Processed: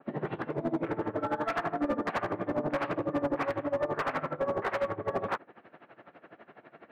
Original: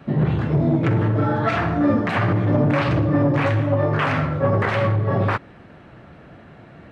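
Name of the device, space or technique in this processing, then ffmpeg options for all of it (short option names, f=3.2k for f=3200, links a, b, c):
helicopter radio: -af "highpass=360,lowpass=2.6k,aeval=exprs='val(0)*pow(10,-18*(0.5-0.5*cos(2*PI*12*n/s))/20)':c=same,asoftclip=type=hard:threshold=-24dB,adynamicequalizer=threshold=0.00631:dfrequency=1700:dqfactor=0.7:tfrequency=1700:tqfactor=0.7:attack=5:release=100:ratio=0.375:range=3.5:mode=cutabove:tftype=highshelf"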